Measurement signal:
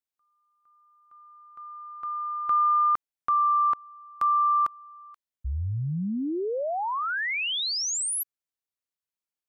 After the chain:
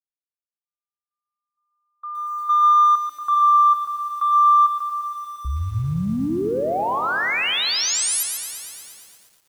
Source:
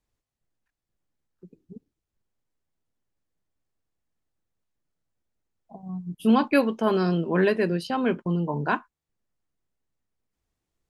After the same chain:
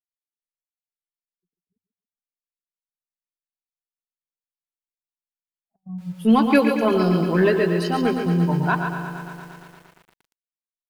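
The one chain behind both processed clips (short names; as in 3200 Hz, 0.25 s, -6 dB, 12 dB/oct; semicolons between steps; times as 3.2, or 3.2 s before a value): per-bin expansion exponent 1.5; gate -47 dBFS, range -31 dB; in parallel at -7 dB: soft clip -24 dBFS; on the sum: notches 50/100 Hz; on a send: thinning echo 0.14 s, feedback 36%, high-pass 200 Hz, level -7.5 dB; on the sum: lo-fi delay 0.116 s, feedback 80%, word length 8-bit, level -10 dB; gain +3 dB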